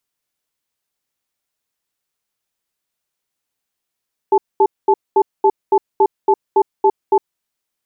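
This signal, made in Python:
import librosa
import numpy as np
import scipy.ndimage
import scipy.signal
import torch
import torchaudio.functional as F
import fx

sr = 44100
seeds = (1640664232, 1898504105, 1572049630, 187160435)

y = fx.cadence(sr, length_s=2.87, low_hz=396.0, high_hz=868.0, on_s=0.06, off_s=0.22, level_db=-11.0)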